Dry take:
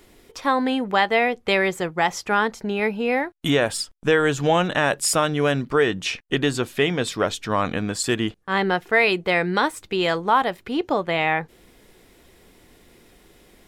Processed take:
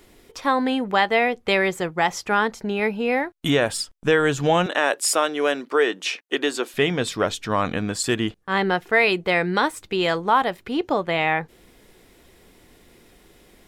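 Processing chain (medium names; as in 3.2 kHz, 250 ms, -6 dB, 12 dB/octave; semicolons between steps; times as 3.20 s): 4.66–6.74 s: high-pass 300 Hz 24 dB/octave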